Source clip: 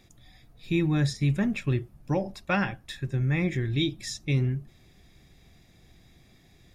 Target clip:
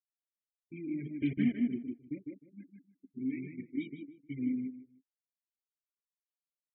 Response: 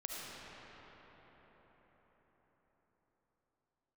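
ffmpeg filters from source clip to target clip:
-filter_complex "[0:a]aeval=exprs='val(0)+0.5*0.0237*sgn(val(0))':c=same,acrusher=bits=3:mix=0:aa=0.000001,adynamicsmooth=sensitivity=1:basefreq=2.3k,asplit=3[a][b][c];[a]bandpass=f=270:t=q:w=8,volume=0dB[d];[b]bandpass=f=2.29k:t=q:w=8,volume=-6dB[e];[c]bandpass=f=3.01k:t=q:w=8,volume=-9dB[f];[d][e][f]amix=inputs=3:normalize=0,highshelf=f=3.9k:g=-11,asplit=3[g][h][i];[g]afade=t=out:st=1.05:d=0.02[j];[h]acontrast=42,afade=t=in:st=1.05:d=0.02,afade=t=out:st=1.52:d=0.02[k];[i]afade=t=in:st=1.52:d=0.02[l];[j][k][l]amix=inputs=3:normalize=0,asettb=1/sr,asplit=3[m][n][o];[m]atrim=end=2.624[p];[n]atrim=start=2.62:end=3.64,asetpts=PTS-STARTPTS,afade=t=in:d=0.004:c=qsin,afade=t=out:st=1.016:d=0.004:c=qsin,asubboost=boost=3:cutoff=75[q];[o]atrim=start=3.636[r];[p][q]acrossfade=d=0.004:c1=hsin:c2=qsin[s];[s][r]acrossfade=d=0.004:c1=qsin:c2=hsin,agate=range=-33dB:threshold=-32dB:ratio=3:detection=peak,afftfilt=real='re*gte(hypot(re,im),0.01)':imag='im*gte(hypot(re,im),0.01)':win_size=1024:overlap=0.75,asplit=2[t][u];[u]adelay=154,lowpass=f=2k:p=1,volume=-3.5dB,asplit=2[v][w];[w]adelay=154,lowpass=f=2k:p=1,volume=0.22,asplit=2[x][y];[y]adelay=154,lowpass=f=2k:p=1,volume=0.22[z];[t][v][x][z]amix=inputs=4:normalize=0,flanger=delay=0.5:depth=4.9:regen=-23:speed=1.4:shape=triangular,volume=1dB"

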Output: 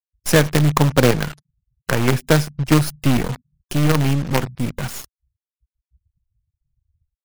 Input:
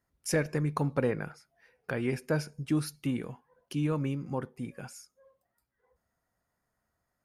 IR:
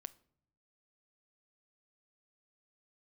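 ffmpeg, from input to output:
-filter_complex "[0:a]asettb=1/sr,asplit=3[a][b][c];[a]atrim=end=3.884[d];[b]atrim=start=3.88:end=4.55,asetpts=PTS-STARTPTS,afade=t=in:d=0.004:c=qsin,afade=t=out:st=0.666:d=0.004:c=qsin,bandreject=f=62.59:t=h:w=4,bandreject=f=125.18:t=h:w=4,bandreject=f=187.77:t=h:w=4[e];[c]atrim=start=4.546[f];[d][e]acrossfade=d=0.004:c1=hsin:c2=qsin[g];[g][f]acrossfade=d=0.004:c1=qsin:c2=hsin,acrossover=split=200[h][i];[i]acrusher=bits=5:dc=4:mix=0:aa=0.000001[j];[h][j]amix=inputs=2:normalize=0,lowshelf=f=82:g=3.5,asplit=2[k][l];[l]aeval=exprs='(mod(18.8*val(0)+1,2)-1)/18.8':c=same,volume=-8dB[m];[k][m]amix=inputs=2:normalize=0,dynaudnorm=f=140:g=3:m=16dB,afftfilt=real='re*gte(hypot(re,im),0.00447)':imag='im*gte(hypot(re,im),0.00447)':win_size=1024:overlap=0.75"

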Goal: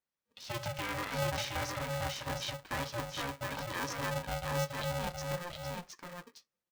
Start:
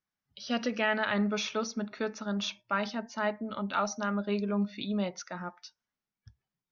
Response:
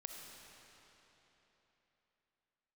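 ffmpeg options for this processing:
-filter_complex "[0:a]asettb=1/sr,asplit=3[a][b][c];[a]atrim=end=4.164[d];[b]atrim=start=4.16:end=4.62,asetpts=PTS-STARTPTS,afade=t=in:d=0.004:c=qsin,afade=t=out:st=0.456:d=0.004:c=qsin,equalizer=f=1.2k:w=0.78:g=-13.5[e];[c]atrim=start=4.616[f];[d][e]acrossfade=d=0.004:c1=hsin:c2=qsin[g];[g][f]acrossfade=d=0.004:c1=qsin:c2=hsin,alimiter=limit=-23dB:level=0:latency=1:release=30,flanger=delay=5.3:depth=2.4:regen=-63:speed=1.5:shape=sinusoidal,aecho=1:1:718:0.668,aeval=exprs='val(0)*sgn(sin(2*PI*350*n/s))':c=same"

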